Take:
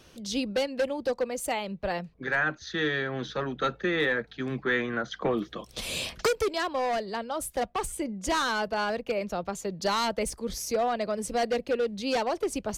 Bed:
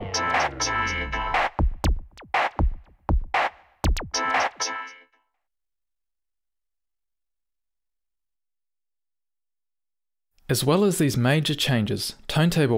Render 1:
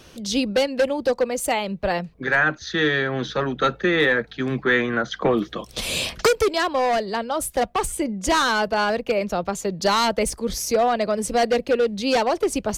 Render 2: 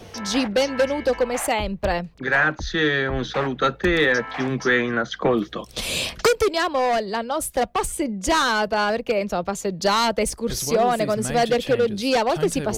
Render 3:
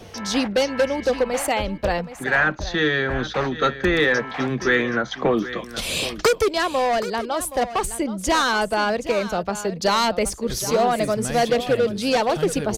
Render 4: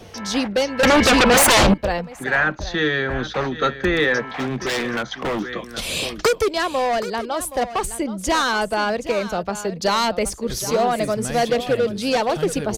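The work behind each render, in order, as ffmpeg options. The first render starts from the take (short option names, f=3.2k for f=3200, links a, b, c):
-af "volume=7.5dB"
-filter_complex "[1:a]volume=-10dB[a];[0:a][a]amix=inputs=2:normalize=0"
-af "aecho=1:1:773:0.211"
-filter_complex "[0:a]asettb=1/sr,asplit=3[a][b][c];[a]atrim=end=0.834[d];[b]atrim=start=0.83:end=1.74,asetpts=PTS-STARTPTS,afade=t=in:d=0.004:c=qsin,afade=t=out:st=0.906:d=0.004:c=qsin,aeval=exprs='0.316*sin(PI/2*5.01*val(0)/0.316)':c=same[e];[c]atrim=start=1.736[f];[d][e]acrossfade=d=0.004:c1=hsin:c2=qsin[g];[g][f]acrossfade=d=0.004:c1=qsin:c2=hsin,asettb=1/sr,asplit=3[h][i][j];[h]atrim=end=4.224[k];[i]atrim=start=4.22:end=5.43,asetpts=PTS-STARTPTS,afade=t=in:d=0.004:c=qsin,afade=t=out:st=1.206:d=0.004:c=qsin,aeval=exprs='0.133*(abs(mod(val(0)/0.133+3,4)-2)-1)':c=same[l];[j]atrim=start=5.426[m];[k][l]acrossfade=d=0.004:c1=hsin:c2=qsin[n];[n][m]acrossfade=d=0.004:c1=qsin:c2=hsin"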